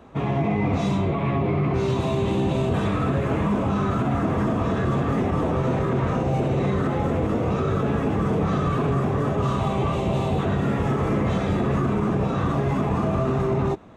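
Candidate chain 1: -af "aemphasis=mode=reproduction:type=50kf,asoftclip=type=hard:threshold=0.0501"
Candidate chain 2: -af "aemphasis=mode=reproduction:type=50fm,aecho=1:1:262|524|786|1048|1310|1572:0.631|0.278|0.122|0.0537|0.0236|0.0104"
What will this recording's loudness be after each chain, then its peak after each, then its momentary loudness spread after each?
-28.5 LUFS, -21.5 LUFS; -26.0 dBFS, -8.5 dBFS; 0 LU, 1 LU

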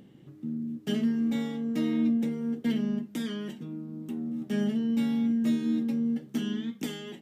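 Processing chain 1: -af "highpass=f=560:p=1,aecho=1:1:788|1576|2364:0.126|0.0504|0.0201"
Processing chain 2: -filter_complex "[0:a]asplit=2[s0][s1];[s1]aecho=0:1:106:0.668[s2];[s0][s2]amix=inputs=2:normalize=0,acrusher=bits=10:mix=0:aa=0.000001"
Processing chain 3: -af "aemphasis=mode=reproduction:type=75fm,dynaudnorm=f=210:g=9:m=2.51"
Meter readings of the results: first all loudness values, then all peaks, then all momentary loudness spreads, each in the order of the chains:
-37.5 LUFS, -29.5 LUFS, -21.0 LUFS; -22.5 dBFS, -16.0 dBFS, -9.5 dBFS; 10 LU, 10 LU, 13 LU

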